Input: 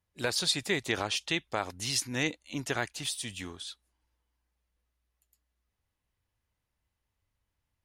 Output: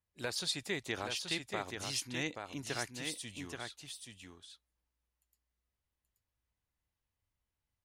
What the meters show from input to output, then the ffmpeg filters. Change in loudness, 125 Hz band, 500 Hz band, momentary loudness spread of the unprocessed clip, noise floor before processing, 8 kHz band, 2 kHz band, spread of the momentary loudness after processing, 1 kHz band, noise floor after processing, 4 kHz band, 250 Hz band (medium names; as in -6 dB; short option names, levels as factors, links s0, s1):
-7.0 dB, -6.5 dB, -6.5 dB, 11 LU, -84 dBFS, -6.5 dB, -6.5 dB, 14 LU, -6.5 dB, under -85 dBFS, -6.5 dB, -6.5 dB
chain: -af "aecho=1:1:829:0.531,volume=0.422"